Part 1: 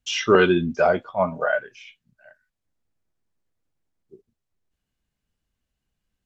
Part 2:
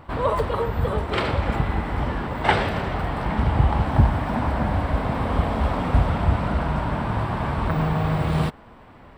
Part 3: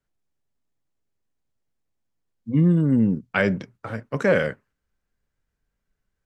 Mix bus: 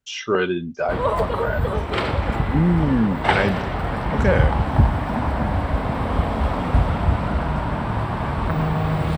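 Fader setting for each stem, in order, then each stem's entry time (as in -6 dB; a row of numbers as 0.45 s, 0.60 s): -4.5 dB, +1.0 dB, -0.5 dB; 0.00 s, 0.80 s, 0.00 s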